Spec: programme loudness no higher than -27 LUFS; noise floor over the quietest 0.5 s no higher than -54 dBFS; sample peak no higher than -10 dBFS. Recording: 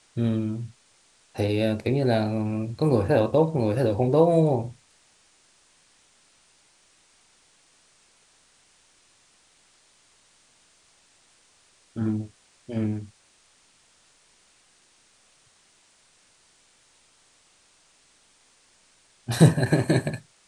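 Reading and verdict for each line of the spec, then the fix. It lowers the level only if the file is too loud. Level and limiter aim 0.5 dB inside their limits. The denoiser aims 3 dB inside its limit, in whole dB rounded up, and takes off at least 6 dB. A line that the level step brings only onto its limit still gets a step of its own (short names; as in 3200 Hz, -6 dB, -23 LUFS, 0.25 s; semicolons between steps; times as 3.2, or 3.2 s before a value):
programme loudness -24.0 LUFS: fail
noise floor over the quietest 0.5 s -61 dBFS: OK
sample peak -3.5 dBFS: fail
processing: gain -3.5 dB; limiter -10.5 dBFS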